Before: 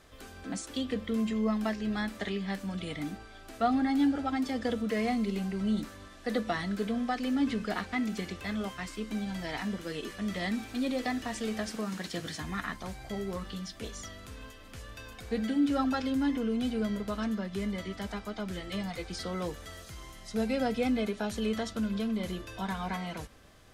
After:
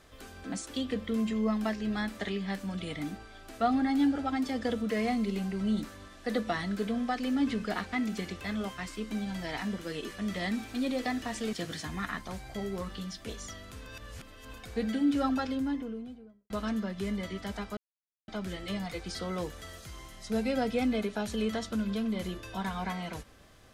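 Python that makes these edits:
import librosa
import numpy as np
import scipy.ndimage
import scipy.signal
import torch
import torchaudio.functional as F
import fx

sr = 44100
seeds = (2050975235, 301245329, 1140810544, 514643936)

y = fx.studio_fade_out(x, sr, start_s=15.76, length_s=1.29)
y = fx.edit(y, sr, fx.cut(start_s=11.53, length_s=0.55),
    fx.reverse_span(start_s=14.41, length_s=0.68),
    fx.insert_silence(at_s=18.32, length_s=0.51), tone=tone)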